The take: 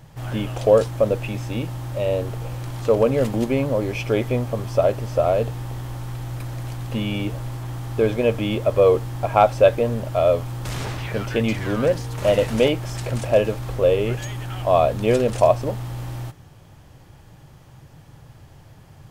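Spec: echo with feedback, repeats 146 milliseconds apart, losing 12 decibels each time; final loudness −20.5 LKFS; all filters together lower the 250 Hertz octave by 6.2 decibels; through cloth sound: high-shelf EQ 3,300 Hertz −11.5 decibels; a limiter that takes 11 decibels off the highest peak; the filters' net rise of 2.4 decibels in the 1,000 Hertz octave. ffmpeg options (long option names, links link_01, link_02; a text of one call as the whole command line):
ffmpeg -i in.wav -af "equalizer=frequency=250:width_type=o:gain=-8.5,equalizer=frequency=1000:width_type=o:gain=5.5,alimiter=limit=-10.5dB:level=0:latency=1,highshelf=frequency=3300:gain=-11.5,aecho=1:1:146|292|438:0.251|0.0628|0.0157,volume=4.5dB" out.wav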